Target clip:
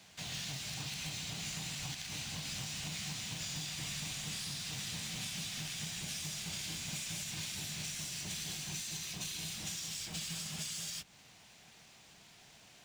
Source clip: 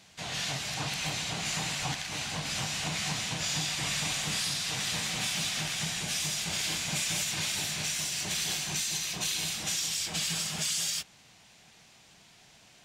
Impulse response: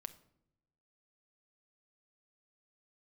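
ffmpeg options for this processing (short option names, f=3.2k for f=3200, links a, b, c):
-filter_complex "[0:a]acrossover=split=260|2400[a][b][c];[a]acompressor=threshold=-42dB:ratio=4[d];[b]acompressor=threshold=-53dB:ratio=4[e];[c]acompressor=threshold=-39dB:ratio=4[f];[d][e][f]amix=inputs=3:normalize=0,acrusher=bits=3:mode=log:mix=0:aa=0.000001,volume=-2dB"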